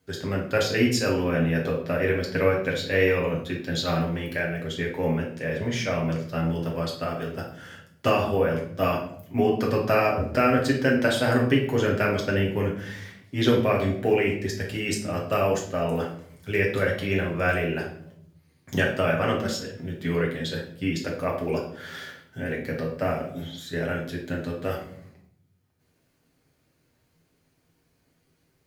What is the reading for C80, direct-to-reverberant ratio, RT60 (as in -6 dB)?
10.0 dB, -2.5 dB, 0.65 s